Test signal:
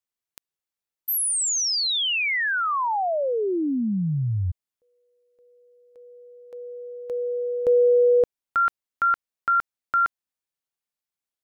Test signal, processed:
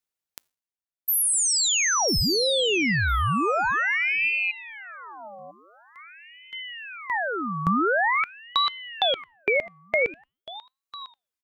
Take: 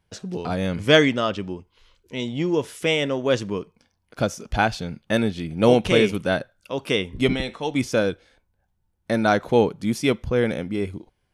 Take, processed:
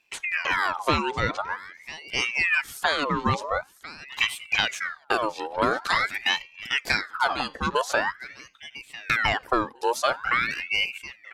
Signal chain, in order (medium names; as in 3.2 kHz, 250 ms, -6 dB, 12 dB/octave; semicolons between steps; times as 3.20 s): reverb removal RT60 1.1 s; compression 12:1, threshold -22 dBFS; feedback comb 130 Hz, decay 0.48 s, harmonics odd, mix 30%; feedback delay 999 ms, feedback 17%, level -17 dB; ring modulator with a swept carrier 1.6 kHz, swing 60%, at 0.46 Hz; trim +8.5 dB